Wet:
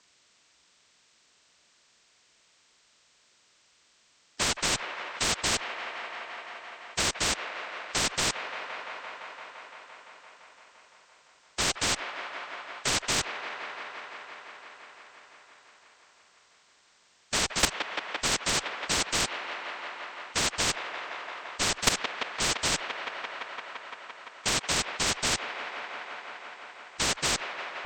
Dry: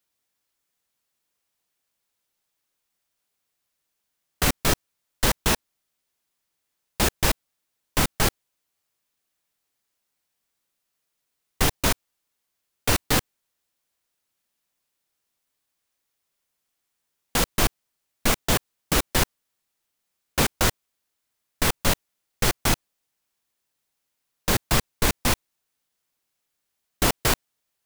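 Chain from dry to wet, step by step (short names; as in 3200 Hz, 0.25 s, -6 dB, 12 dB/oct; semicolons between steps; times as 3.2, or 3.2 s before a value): inharmonic rescaling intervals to 79%; LPF 6300 Hz 12 dB/oct; notch 800 Hz, Q 15; in parallel at -8.5 dB: one-sided clip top -23.5 dBFS; on the sum: level quantiser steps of 18 dB; on a send: band-limited delay 0.171 s, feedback 83%, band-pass 1300 Hz, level -20 dB; on the sum: spectral compressor 4:1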